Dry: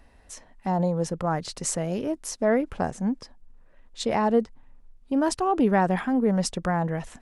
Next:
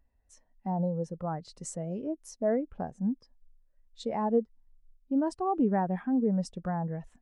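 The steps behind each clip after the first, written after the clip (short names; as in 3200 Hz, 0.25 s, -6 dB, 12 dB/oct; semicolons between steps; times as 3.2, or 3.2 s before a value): in parallel at +1 dB: compressor, threshold -30 dBFS, peak gain reduction 13.5 dB; on the sum: spectral expander 1.5:1; gain -7.5 dB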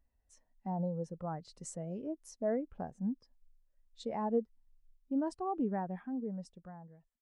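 ending faded out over 2.01 s; gain -5.5 dB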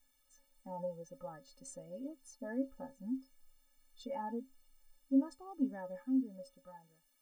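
requantised 12-bit, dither triangular; metallic resonator 260 Hz, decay 0.21 s, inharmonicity 0.03; gain +8.5 dB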